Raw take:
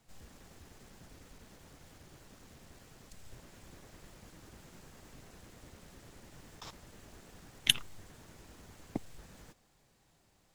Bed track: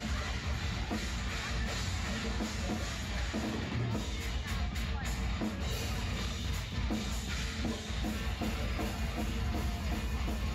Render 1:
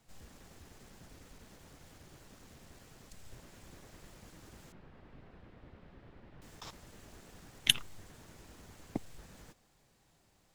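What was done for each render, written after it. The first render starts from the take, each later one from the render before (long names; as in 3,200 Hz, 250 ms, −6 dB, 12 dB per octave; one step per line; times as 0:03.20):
0:04.72–0:06.42: high-frequency loss of the air 390 metres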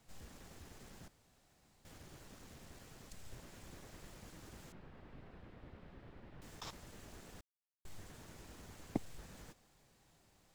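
0:01.08–0:01.85: fill with room tone
0:07.41–0:07.85: silence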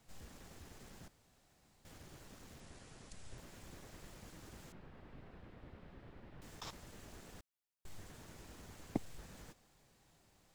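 0:02.60–0:03.38: linear-phase brick-wall low-pass 11,000 Hz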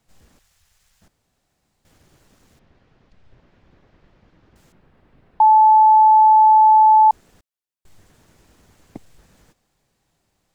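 0:00.39–0:01.02: guitar amp tone stack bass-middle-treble 10-0-10
0:02.59–0:04.56: high-frequency loss of the air 260 metres
0:05.40–0:07.11: beep over 868 Hz −7.5 dBFS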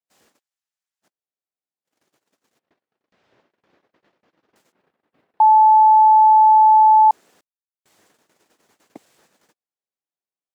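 noise gate −53 dBFS, range −28 dB
high-pass filter 330 Hz 12 dB per octave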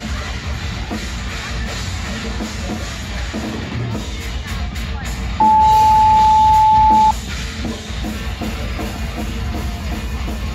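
mix in bed track +11.5 dB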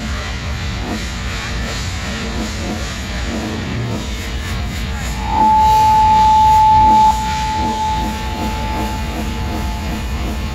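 peak hold with a rise ahead of every peak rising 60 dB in 0.65 s
on a send: feedback delay with all-pass diffusion 745 ms, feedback 45%, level −11 dB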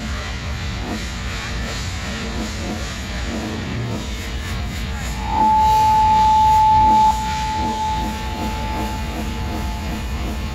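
level −3.5 dB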